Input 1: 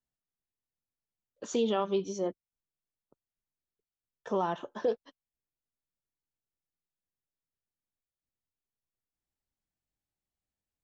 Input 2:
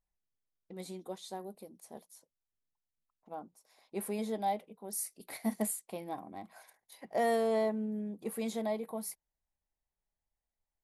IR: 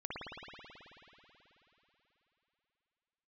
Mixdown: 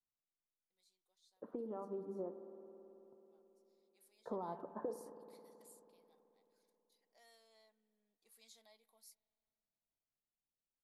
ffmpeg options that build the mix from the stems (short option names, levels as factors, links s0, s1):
-filter_complex "[0:a]lowpass=f=1200:w=0.5412,lowpass=f=1200:w=1.3066,equalizer=f=67:w=1.7:g=-11.5,acompressor=threshold=0.02:ratio=10,volume=0.335,asplit=2[s0][s1];[s1]volume=0.282[s2];[1:a]aderivative,volume=0.15,afade=t=in:st=7.96:d=0.5:silence=0.446684,asplit=2[s3][s4];[s4]volume=0.0668[s5];[2:a]atrim=start_sample=2205[s6];[s2][s5]amix=inputs=2:normalize=0[s7];[s7][s6]afir=irnorm=-1:irlink=0[s8];[s0][s3][s8]amix=inputs=3:normalize=0,firequalizer=gain_entry='entry(2800,0);entry(4400,6);entry(10000,-10)':delay=0.05:min_phase=1,dynaudnorm=f=360:g=11:m=1.5"